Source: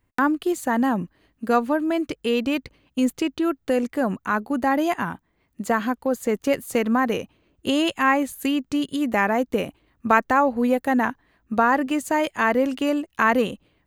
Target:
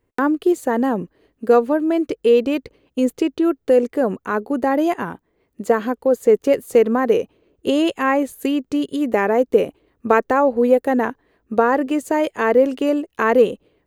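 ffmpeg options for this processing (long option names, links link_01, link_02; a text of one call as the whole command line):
ffmpeg -i in.wav -af "equalizer=frequency=440:width=1.6:gain=13.5,volume=-2dB" out.wav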